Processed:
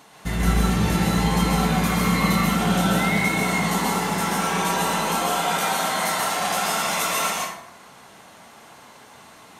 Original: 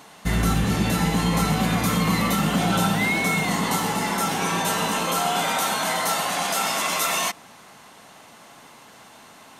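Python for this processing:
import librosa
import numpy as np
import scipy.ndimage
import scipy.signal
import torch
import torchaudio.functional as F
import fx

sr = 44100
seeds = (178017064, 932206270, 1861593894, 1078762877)

y = fx.rev_plate(x, sr, seeds[0], rt60_s=0.73, hf_ratio=0.6, predelay_ms=120, drr_db=-2.5)
y = y * librosa.db_to_amplitude(-3.5)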